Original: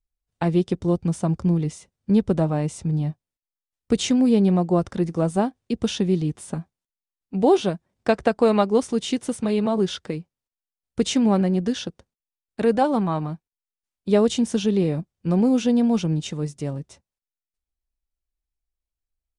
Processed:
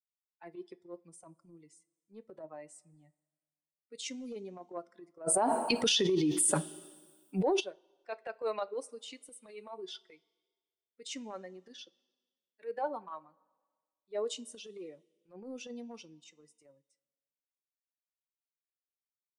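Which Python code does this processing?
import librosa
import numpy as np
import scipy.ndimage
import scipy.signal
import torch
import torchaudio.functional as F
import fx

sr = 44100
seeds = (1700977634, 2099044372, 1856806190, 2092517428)

y = fx.bin_expand(x, sr, power=2.0)
y = scipy.signal.sosfilt(scipy.signal.butter(4, 380.0, 'highpass', fs=sr, output='sos'), y)
y = fx.transient(y, sr, attack_db=-12, sustain_db=2)
y = fx.rev_double_slope(y, sr, seeds[0], early_s=0.2, late_s=1.5, knee_db=-19, drr_db=13.5)
y = fx.env_flatten(y, sr, amount_pct=100, at=(5.26, 7.59), fade=0.02)
y = F.gain(torch.from_numpy(y), -7.5).numpy()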